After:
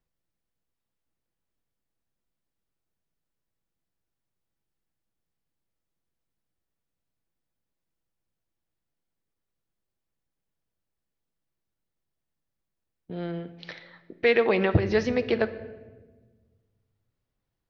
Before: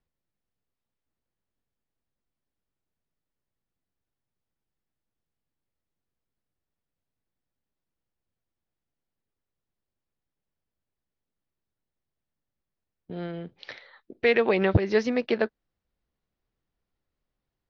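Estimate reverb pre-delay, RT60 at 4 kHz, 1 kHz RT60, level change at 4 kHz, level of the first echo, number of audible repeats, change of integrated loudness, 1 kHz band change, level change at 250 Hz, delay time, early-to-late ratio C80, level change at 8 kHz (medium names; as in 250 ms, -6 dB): 6 ms, 0.85 s, 1.1 s, +0.5 dB, no echo, no echo, -0.5 dB, 0.0 dB, 0.0 dB, no echo, 16.0 dB, no reading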